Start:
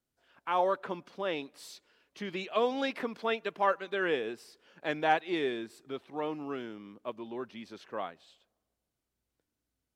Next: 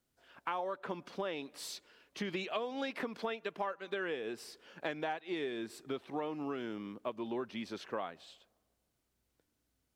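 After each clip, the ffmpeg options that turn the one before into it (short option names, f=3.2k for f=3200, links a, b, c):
-af "acompressor=threshold=-38dB:ratio=16,volume=4.5dB"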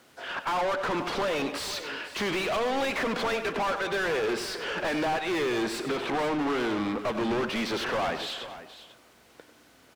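-filter_complex "[0:a]asplit=2[a][b];[b]highpass=f=720:p=1,volume=38dB,asoftclip=type=tanh:threshold=-20.5dB[c];[a][c]amix=inputs=2:normalize=0,lowpass=f=2.1k:p=1,volume=-6dB,aecho=1:1:96|494:0.266|0.2"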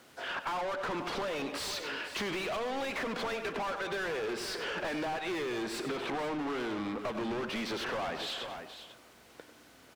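-af "acompressor=threshold=-34dB:ratio=4"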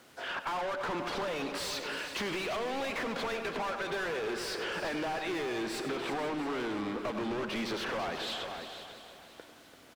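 -af "aecho=1:1:339|678|1017|1356|1695:0.282|0.144|0.0733|0.0374|0.0191"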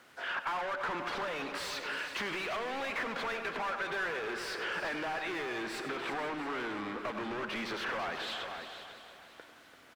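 -af "equalizer=f=1.6k:w=0.7:g=8,volume=-5.5dB"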